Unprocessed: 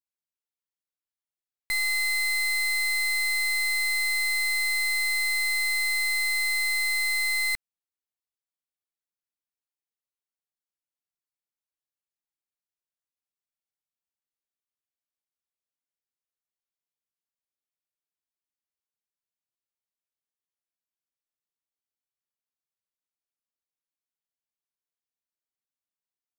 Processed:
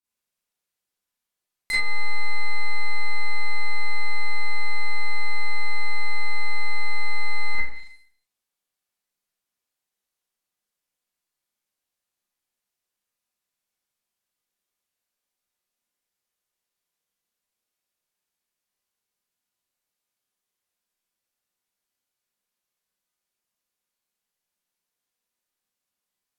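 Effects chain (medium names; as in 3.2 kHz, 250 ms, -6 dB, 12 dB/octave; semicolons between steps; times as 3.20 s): Schroeder reverb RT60 0.61 s, combs from 31 ms, DRR -10 dB; low-pass that closes with the level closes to 1.4 kHz, closed at -13.5 dBFS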